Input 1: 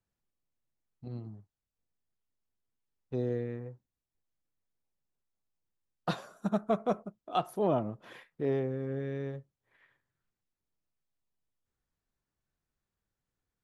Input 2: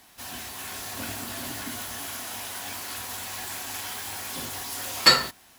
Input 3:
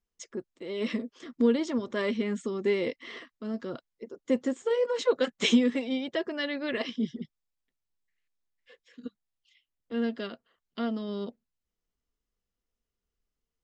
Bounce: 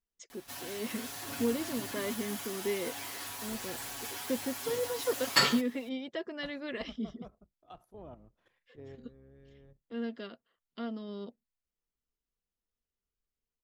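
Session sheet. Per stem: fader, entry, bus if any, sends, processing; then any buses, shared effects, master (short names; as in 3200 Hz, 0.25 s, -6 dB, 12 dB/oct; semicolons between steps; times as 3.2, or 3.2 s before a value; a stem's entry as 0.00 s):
-17.0 dB, 0.35 s, no send, octaver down 2 oct, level -3 dB; level quantiser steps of 10 dB
+2.5 dB, 0.30 s, no send, comb 7.1 ms, depth 83%; auto duck -11 dB, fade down 0.65 s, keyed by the third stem
-7.0 dB, 0.00 s, no send, dry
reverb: off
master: dry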